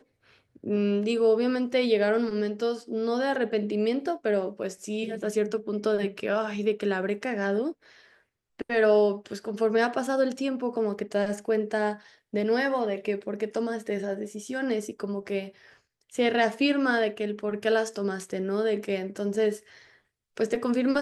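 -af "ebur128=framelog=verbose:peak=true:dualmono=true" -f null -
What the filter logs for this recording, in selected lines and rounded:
Integrated loudness:
  I:         -24.4 LUFS
  Threshold: -34.9 LUFS
Loudness range:
  LRA:         3.6 LU
  Threshold: -44.9 LUFS
  LRA low:   -26.6 LUFS
  LRA high:  -23.0 LUFS
True peak:
  Peak:      -10.6 dBFS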